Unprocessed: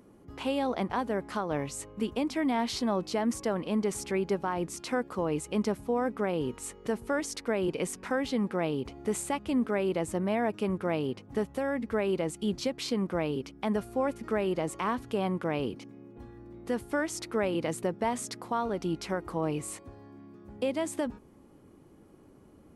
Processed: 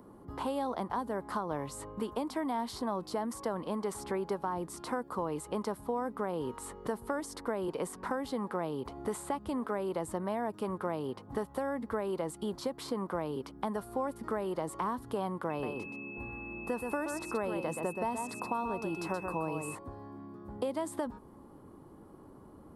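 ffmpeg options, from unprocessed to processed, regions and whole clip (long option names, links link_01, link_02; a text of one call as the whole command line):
ffmpeg -i in.wav -filter_complex "[0:a]asettb=1/sr,asplit=3[link_01][link_02][link_03];[link_01]atrim=end=15.504[link_04];[link_02]atrim=start=15.5:end=19.75,asetpts=PTS-STARTPTS,afade=type=in:duration=0.004:curve=qsin,afade=type=out:start_time=4.246:duration=0.004:curve=qsin,aeval=exprs='val(0)+0.0224*sin(2*PI*2600*n/s)':channel_layout=same,aecho=1:1:125:0.447,atrim=end_sample=187425[link_05];[link_03]atrim=start=19.746[link_06];[link_04][link_05]acrossfade=duration=0.004:curve1=hsin:curve2=qsin[link_07];[link_07][link_06]acrossfade=duration=0.004:curve1=qsin:curve2=hsin,equalizer=frequency=1000:width_type=o:width=0.67:gain=8,equalizer=frequency=2500:width_type=o:width=0.67:gain=-11,equalizer=frequency=6300:width_type=o:width=0.67:gain=-9,acrossover=split=450|1900|5000[link_08][link_09][link_10][link_11];[link_08]acompressor=threshold=-41dB:ratio=4[link_12];[link_09]acompressor=threshold=-38dB:ratio=4[link_13];[link_10]acompressor=threshold=-56dB:ratio=4[link_14];[link_11]acompressor=threshold=-48dB:ratio=4[link_15];[link_12][link_13][link_14][link_15]amix=inputs=4:normalize=0,volume=2.5dB" out.wav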